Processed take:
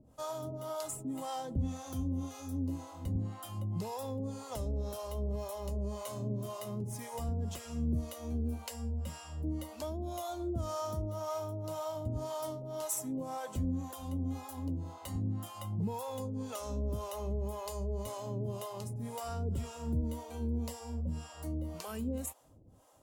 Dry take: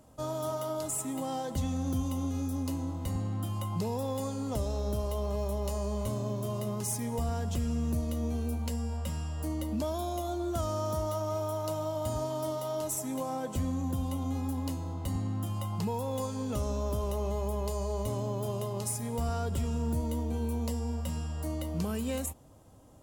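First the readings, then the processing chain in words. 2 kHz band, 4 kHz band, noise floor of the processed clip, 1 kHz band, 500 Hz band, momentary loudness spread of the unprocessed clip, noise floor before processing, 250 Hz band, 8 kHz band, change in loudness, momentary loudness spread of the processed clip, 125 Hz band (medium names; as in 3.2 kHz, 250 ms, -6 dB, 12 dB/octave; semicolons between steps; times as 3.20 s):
-4.5 dB, -4.5 dB, -50 dBFS, -4.5 dB, -5.5 dB, 3 LU, -37 dBFS, -4.5 dB, -5.5 dB, -4.5 dB, 4 LU, -4.0 dB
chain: harmonic tremolo 1.9 Hz, depth 100%, crossover 510 Hz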